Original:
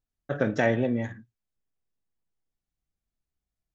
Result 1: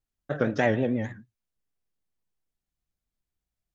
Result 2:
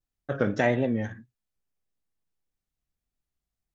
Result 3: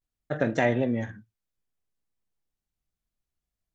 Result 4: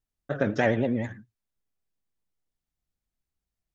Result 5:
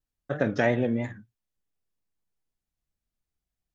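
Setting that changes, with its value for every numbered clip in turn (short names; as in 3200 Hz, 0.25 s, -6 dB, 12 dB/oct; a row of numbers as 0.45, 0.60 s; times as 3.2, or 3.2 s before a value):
vibrato, rate: 6.6, 1.7, 0.54, 9.8, 3.1 Hz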